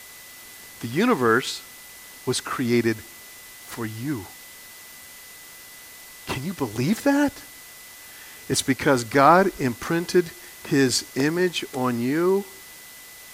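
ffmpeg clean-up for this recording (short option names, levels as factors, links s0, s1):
-af "adeclick=t=4,bandreject=f=2000:w=30,afftdn=nr=24:nf=-44"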